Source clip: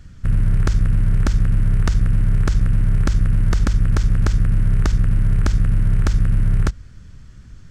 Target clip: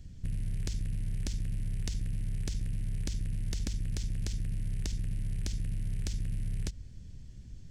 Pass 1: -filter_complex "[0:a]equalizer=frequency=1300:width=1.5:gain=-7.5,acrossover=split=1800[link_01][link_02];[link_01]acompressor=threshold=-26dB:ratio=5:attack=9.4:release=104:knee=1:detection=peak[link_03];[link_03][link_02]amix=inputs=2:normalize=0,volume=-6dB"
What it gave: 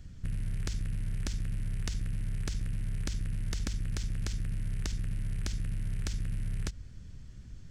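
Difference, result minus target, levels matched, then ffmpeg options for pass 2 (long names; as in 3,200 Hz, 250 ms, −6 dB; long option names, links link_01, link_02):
1,000 Hz band +7.0 dB
-filter_complex "[0:a]equalizer=frequency=1300:width=1.5:gain=-18.5,acrossover=split=1800[link_01][link_02];[link_01]acompressor=threshold=-26dB:ratio=5:attack=9.4:release=104:knee=1:detection=peak[link_03];[link_03][link_02]amix=inputs=2:normalize=0,volume=-6dB"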